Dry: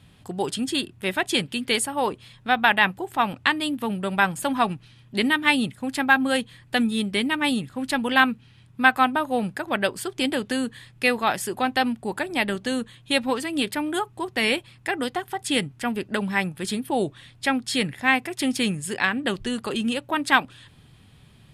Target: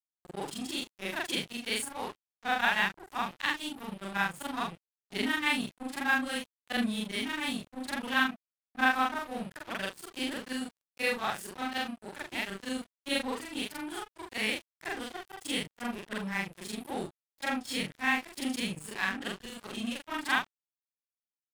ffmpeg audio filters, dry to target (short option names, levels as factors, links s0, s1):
-af "afftfilt=real='re':imag='-im':win_size=4096:overlap=0.75,adynamicequalizer=threshold=0.00891:dfrequency=540:dqfactor=0.86:tfrequency=540:tqfactor=0.86:attack=5:release=100:ratio=0.375:range=4:mode=cutabove:tftype=bell,aeval=exprs='sgn(val(0))*max(abs(val(0))-0.0119,0)':c=same,volume=0.794"